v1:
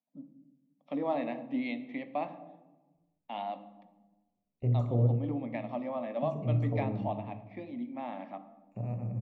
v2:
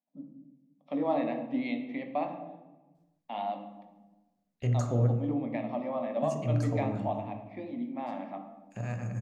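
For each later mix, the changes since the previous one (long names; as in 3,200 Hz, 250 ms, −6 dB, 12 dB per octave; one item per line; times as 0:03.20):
first voice: send +6.5 dB
second voice: remove moving average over 27 samples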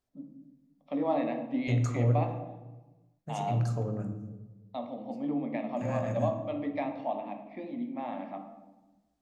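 second voice: entry −2.95 s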